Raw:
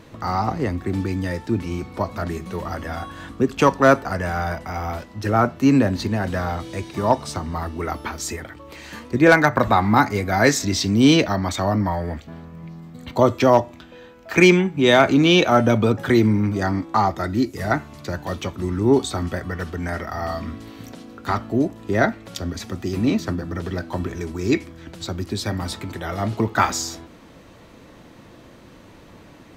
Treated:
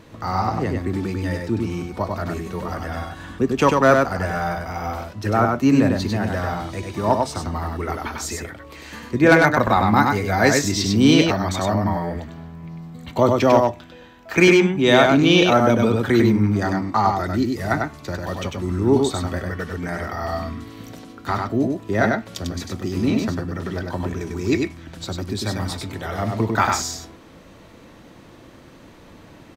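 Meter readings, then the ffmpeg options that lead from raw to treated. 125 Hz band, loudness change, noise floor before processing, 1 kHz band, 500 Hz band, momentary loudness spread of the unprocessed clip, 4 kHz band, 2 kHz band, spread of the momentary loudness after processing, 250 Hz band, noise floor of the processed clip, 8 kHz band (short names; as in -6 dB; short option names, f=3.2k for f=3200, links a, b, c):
+0.5 dB, +0.5 dB, -46 dBFS, +0.5 dB, +0.5 dB, 16 LU, +0.5 dB, +0.5 dB, 15 LU, +0.5 dB, -46 dBFS, +0.5 dB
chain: -af "aecho=1:1:98:0.668,volume=-1dB"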